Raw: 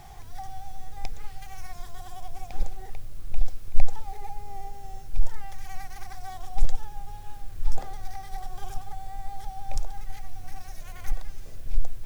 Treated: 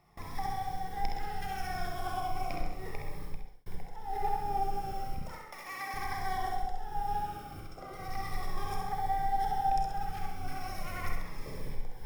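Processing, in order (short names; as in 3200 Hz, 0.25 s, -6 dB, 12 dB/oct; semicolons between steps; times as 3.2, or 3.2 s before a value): 5.18–5.94 HPF 330 Hz 12 dB/oct; gate with hold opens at -35 dBFS; compressor 12:1, threshold -24 dBFS, peak gain reduction 19.5 dB; 7.2–8.09 notch comb 850 Hz; flutter echo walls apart 11.4 m, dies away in 0.68 s; reverb RT60 0.60 s, pre-delay 32 ms, DRR 3 dB; 3.22–3.66 fade out; cascading phaser falling 0.36 Hz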